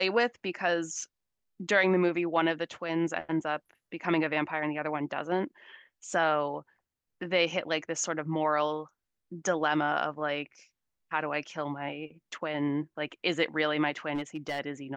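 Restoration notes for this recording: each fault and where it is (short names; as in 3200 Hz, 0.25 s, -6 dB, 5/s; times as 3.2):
14.15–14.6 clipped -28 dBFS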